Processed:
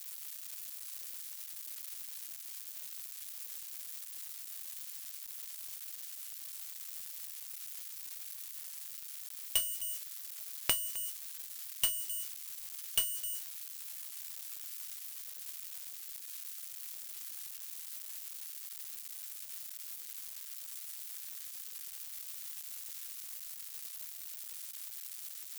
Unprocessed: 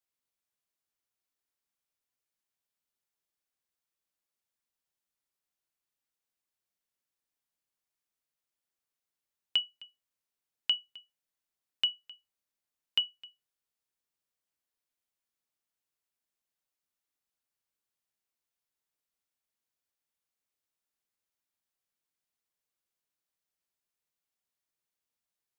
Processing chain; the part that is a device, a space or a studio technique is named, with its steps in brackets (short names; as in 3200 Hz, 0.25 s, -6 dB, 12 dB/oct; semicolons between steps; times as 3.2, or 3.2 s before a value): budget class-D amplifier (switching dead time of 0.14 ms; switching spikes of -34.5 dBFS); gain +8.5 dB